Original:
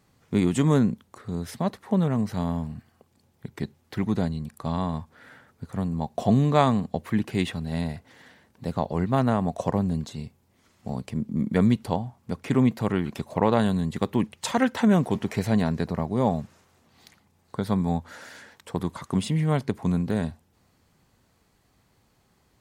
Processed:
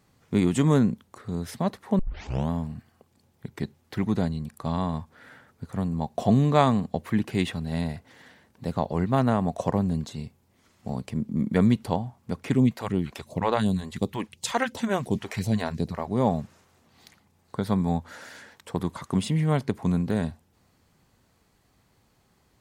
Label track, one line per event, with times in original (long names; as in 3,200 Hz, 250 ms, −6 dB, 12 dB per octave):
1.990000	1.990000	tape start 0.51 s
12.530000	16.080000	all-pass phaser stages 2, 2.8 Hz, lowest notch 120–1,700 Hz